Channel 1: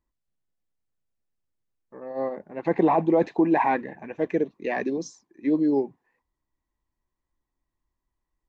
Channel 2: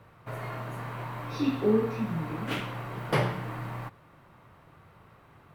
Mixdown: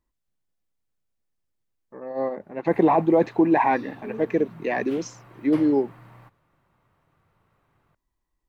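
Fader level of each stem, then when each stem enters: +2.0 dB, -12.0 dB; 0.00 s, 2.40 s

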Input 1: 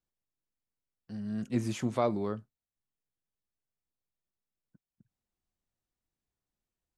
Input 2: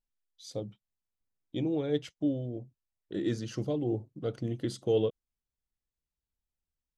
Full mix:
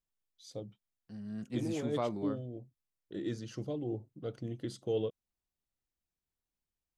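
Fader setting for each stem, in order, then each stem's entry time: -6.0 dB, -6.0 dB; 0.00 s, 0.00 s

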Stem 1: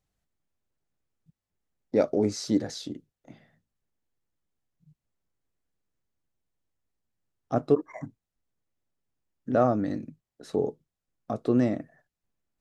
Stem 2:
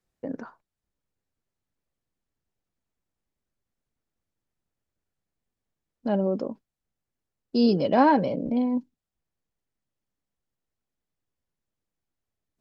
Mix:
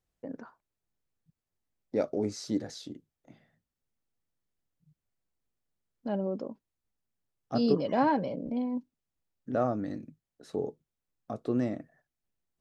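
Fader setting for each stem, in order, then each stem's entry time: -6.0 dB, -7.0 dB; 0.00 s, 0.00 s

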